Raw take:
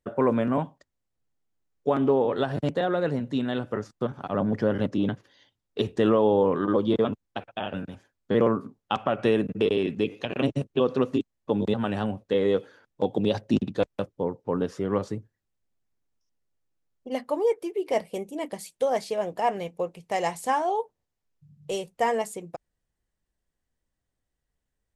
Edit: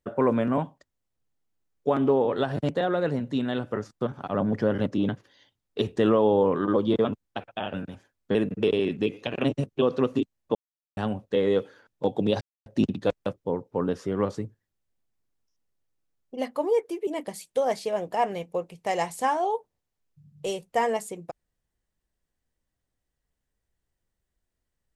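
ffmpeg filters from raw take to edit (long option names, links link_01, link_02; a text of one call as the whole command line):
ffmpeg -i in.wav -filter_complex "[0:a]asplit=6[link_01][link_02][link_03][link_04][link_05][link_06];[link_01]atrim=end=8.352[link_07];[link_02]atrim=start=9.328:end=11.53,asetpts=PTS-STARTPTS,afade=type=out:start_time=2.198:duration=0.004:curve=hsin[link_08];[link_03]atrim=start=11.53:end=11.95,asetpts=PTS-STARTPTS,volume=0[link_09];[link_04]atrim=start=11.95:end=13.39,asetpts=PTS-STARTPTS,afade=type=in:duration=0.004:curve=hsin,afade=type=out:start_time=1.436:duration=0.004:curve=hsin,apad=pad_dur=0.25[link_10];[link_05]atrim=start=13.39:end=17.802,asetpts=PTS-STARTPTS,afade=type=in:duration=0.004:curve=hsin[link_11];[link_06]atrim=start=18.318[link_12];[link_08][link_09][link_10][link_11]concat=n=4:v=0:a=1[link_13];[link_07][link_13]acrossfade=duration=0.004:curve1=hsin:curve2=hsin[link_14];[link_14][link_12]acrossfade=duration=0.004:curve1=hsin:curve2=hsin" out.wav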